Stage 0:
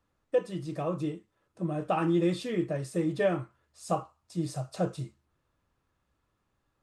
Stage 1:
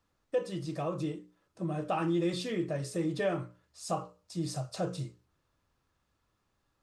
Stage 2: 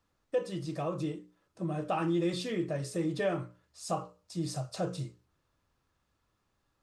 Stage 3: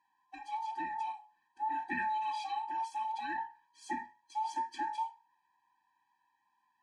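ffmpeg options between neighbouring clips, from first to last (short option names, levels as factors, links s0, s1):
-filter_complex "[0:a]equalizer=f=5100:t=o:w=1.1:g=5,bandreject=f=60:t=h:w=6,bandreject=f=120:t=h:w=6,bandreject=f=180:t=h:w=6,bandreject=f=240:t=h:w=6,bandreject=f=300:t=h:w=6,bandreject=f=360:t=h:w=6,bandreject=f=420:t=h:w=6,bandreject=f=480:t=h:w=6,bandreject=f=540:t=h:w=6,bandreject=f=600:t=h:w=6,asplit=2[s0][s1];[s1]alimiter=level_in=1.26:limit=0.0631:level=0:latency=1:release=84,volume=0.794,volume=1.06[s2];[s0][s2]amix=inputs=2:normalize=0,volume=0.473"
-af anull
-af "afftfilt=real='real(if(between(b,1,1008),(2*floor((b-1)/48)+1)*48-b,b),0)':imag='imag(if(between(b,1,1008),(2*floor((b-1)/48)+1)*48-b,b),0)*if(between(b,1,1008),-1,1)':win_size=2048:overlap=0.75,bandpass=f=1400:t=q:w=0.62:csg=0,afftfilt=real='re*eq(mod(floor(b*sr/1024/380),2),0)':imag='im*eq(mod(floor(b*sr/1024/380),2),0)':win_size=1024:overlap=0.75,volume=1.41"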